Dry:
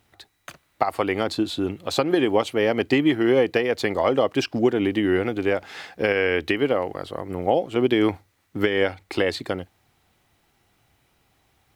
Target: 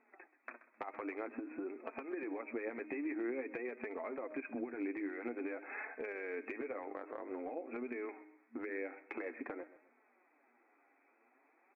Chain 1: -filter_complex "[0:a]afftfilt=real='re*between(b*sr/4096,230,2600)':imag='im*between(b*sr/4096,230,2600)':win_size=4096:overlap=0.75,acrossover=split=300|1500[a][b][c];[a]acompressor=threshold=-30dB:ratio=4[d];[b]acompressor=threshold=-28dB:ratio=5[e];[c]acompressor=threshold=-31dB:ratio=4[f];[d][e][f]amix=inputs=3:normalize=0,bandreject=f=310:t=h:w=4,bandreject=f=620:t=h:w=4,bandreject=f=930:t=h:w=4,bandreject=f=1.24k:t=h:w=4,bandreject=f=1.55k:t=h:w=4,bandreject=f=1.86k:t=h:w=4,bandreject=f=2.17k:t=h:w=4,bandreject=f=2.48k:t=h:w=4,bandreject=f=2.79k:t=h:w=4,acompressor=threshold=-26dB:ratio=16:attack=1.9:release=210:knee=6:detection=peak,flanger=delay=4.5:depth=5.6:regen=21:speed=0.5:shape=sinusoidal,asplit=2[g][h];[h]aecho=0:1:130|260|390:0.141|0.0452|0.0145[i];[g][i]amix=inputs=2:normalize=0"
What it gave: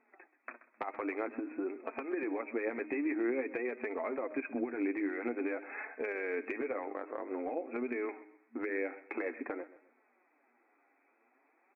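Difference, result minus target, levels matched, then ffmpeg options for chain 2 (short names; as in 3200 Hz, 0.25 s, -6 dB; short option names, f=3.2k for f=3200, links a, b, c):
compressor: peak gain reduction -6 dB
-filter_complex "[0:a]afftfilt=real='re*between(b*sr/4096,230,2600)':imag='im*between(b*sr/4096,230,2600)':win_size=4096:overlap=0.75,acrossover=split=300|1500[a][b][c];[a]acompressor=threshold=-30dB:ratio=4[d];[b]acompressor=threshold=-28dB:ratio=5[e];[c]acompressor=threshold=-31dB:ratio=4[f];[d][e][f]amix=inputs=3:normalize=0,bandreject=f=310:t=h:w=4,bandreject=f=620:t=h:w=4,bandreject=f=930:t=h:w=4,bandreject=f=1.24k:t=h:w=4,bandreject=f=1.55k:t=h:w=4,bandreject=f=1.86k:t=h:w=4,bandreject=f=2.17k:t=h:w=4,bandreject=f=2.48k:t=h:w=4,bandreject=f=2.79k:t=h:w=4,acompressor=threshold=-32.5dB:ratio=16:attack=1.9:release=210:knee=6:detection=peak,flanger=delay=4.5:depth=5.6:regen=21:speed=0.5:shape=sinusoidal,asplit=2[g][h];[h]aecho=0:1:130|260|390:0.141|0.0452|0.0145[i];[g][i]amix=inputs=2:normalize=0"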